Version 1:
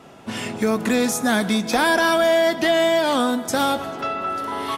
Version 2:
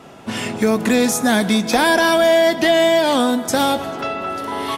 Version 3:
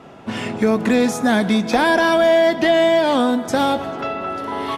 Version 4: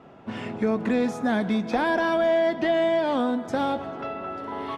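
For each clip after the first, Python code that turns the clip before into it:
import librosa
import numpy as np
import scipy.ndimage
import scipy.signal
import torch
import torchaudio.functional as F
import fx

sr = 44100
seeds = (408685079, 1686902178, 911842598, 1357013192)

y1 = fx.dynamic_eq(x, sr, hz=1300.0, q=3.0, threshold_db=-34.0, ratio=4.0, max_db=-5)
y1 = y1 * 10.0 ** (4.0 / 20.0)
y2 = fx.lowpass(y1, sr, hz=2700.0, slope=6)
y3 = fx.lowpass(y2, sr, hz=2300.0, slope=6)
y3 = y3 * 10.0 ** (-7.0 / 20.0)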